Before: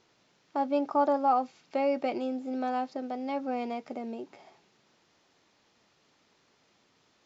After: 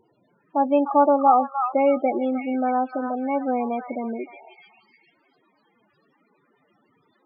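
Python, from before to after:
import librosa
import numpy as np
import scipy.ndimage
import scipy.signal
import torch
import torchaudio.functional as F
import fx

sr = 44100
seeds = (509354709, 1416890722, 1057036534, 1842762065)

y = fx.echo_stepped(x, sr, ms=303, hz=1400.0, octaves=0.7, feedback_pct=70, wet_db=-1.5)
y = fx.spec_topn(y, sr, count=16)
y = y * 10.0 ** (8.5 / 20.0)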